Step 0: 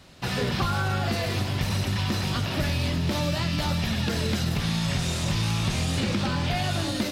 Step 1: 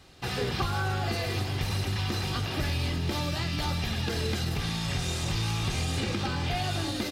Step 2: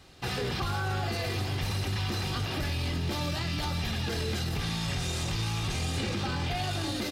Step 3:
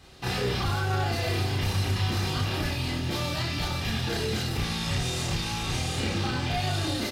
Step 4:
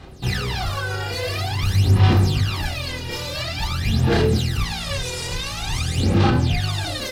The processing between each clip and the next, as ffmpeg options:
-af "aecho=1:1:2.5:0.4,volume=-3.5dB"
-af "alimiter=limit=-23dB:level=0:latency=1:release=10"
-af "aecho=1:1:32.07|99.13:1|0.316"
-af "aphaser=in_gain=1:out_gain=1:delay=2.1:decay=0.78:speed=0.48:type=sinusoidal"

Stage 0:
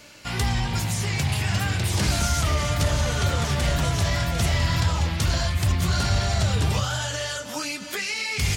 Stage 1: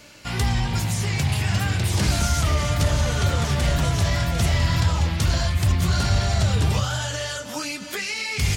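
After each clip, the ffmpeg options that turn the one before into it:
-af "lowshelf=f=370:g=2.5"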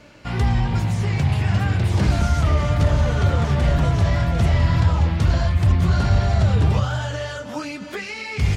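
-af "lowpass=f=1.3k:p=1,volume=3.5dB"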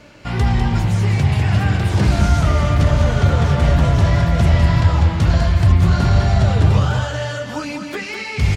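-af "aecho=1:1:200:0.473,volume=3dB"

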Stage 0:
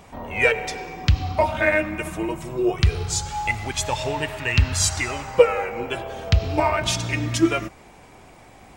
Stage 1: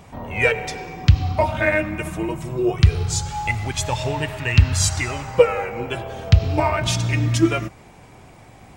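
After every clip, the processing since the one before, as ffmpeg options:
-af "equalizer=f=120:t=o:w=1.3:g=7.5"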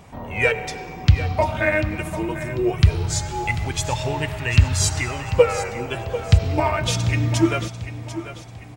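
-af "aecho=1:1:743|1486|2229|2972:0.237|0.0901|0.0342|0.013,volume=-1dB"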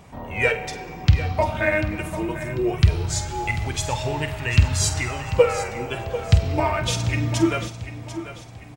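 -filter_complex "[0:a]asplit=2[a][b];[b]adelay=48,volume=-11dB[c];[a][c]amix=inputs=2:normalize=0,volume=-1.5dB"

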